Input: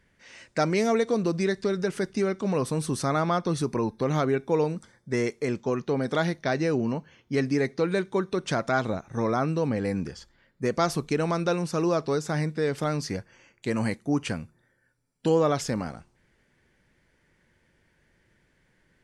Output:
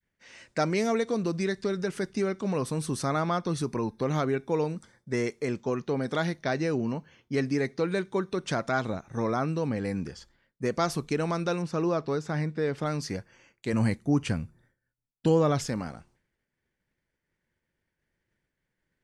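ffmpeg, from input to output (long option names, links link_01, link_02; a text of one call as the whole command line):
ffmpeg -i in.wav -filter_complex "[0:a]asettb=1/sr,asplit=3[link_01][link_02][link_03];[link_01]atrim=end=11.624[link_04];[link_02]atrim=start=11.62:end=12.86,asetpts=PTS-STARTPTS,afade=type=in:duration=0.004:curve=qsin,afade=type=out:start_time=1.236:duration=0.004:curve=qsin,aemphasis=mode=reproduction:type=50fm[link_05];[link_03]atrim=start=12.856[link_06];[link_04][link_05]acrossfade=duration=0.004:curve1=hsin:curve2=qsin[link_07];[link_07][link_06]acrossfade=duration=0.004:curve1=qsin:curve2=hsin,asettb=1/sr,asplit=3[link_08][link_09][link_10];[link_08]atrim=end=13.734[link_11];[link_09]atrim=start=13.73:end=15.66,asetpts=PTS-STARTPTS,afade=type=in:duration=0.004:curve=qsin,afade=type=out:start_time=1.926:duration=0.004:curve=qsin,lowshelf=frequency=160:gain=11[link_12];[link_10]atrim=start=15.656[link_13];[link_11][link_12]acrossfade=duration=0.004:curve1=hsin:curve2=qsin[link_14];[link_14][link_13]acrossfade=duration=0.004:curve1=qsin:curve2=hsin,agate=range=-33dB:threshold=-56dB:ratio=3:detection=peak,adynamicequalizer=threshold=0.0224:dfrequency=550:dqfactor=0.95:tfrequency=550:tqfactor=0.95:attack=5:release=100:ratio=0.375:range=1.5:mode=cutabove:tftype=bell,volume=-2dB" out.wav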